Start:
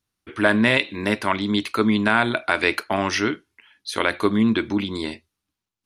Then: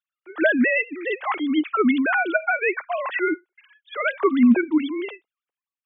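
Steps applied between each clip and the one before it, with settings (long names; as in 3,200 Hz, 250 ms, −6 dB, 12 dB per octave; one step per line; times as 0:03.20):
three sine waves on the formant tracks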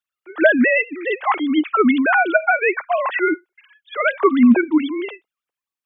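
dynamic equaliser 830 Hz, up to +5 dB, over −32 dBFS, Q 1.1
level +3 dB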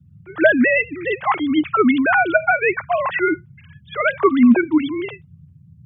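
noise in a band 78–170 Hz −45 dBFS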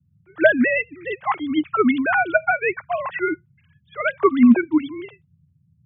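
expander for the loud parts 1.5 to 1, over −35 dBFS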